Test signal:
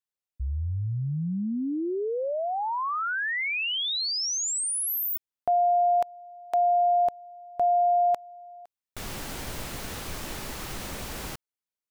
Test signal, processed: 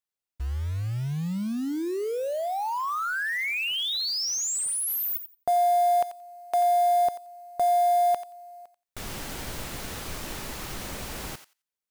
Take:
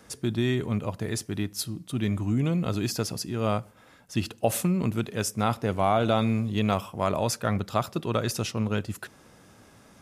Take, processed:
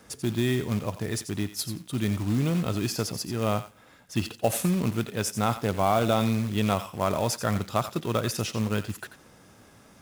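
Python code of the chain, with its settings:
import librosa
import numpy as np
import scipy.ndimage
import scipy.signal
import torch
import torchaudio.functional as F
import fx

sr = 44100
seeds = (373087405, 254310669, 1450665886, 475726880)

y = fx.quant_float(x, sr, bits=2)
y = fx.echo_thinned(y, sr, ms=88, feedback_pct=15, hz=1200.0, wet_db=-10.0)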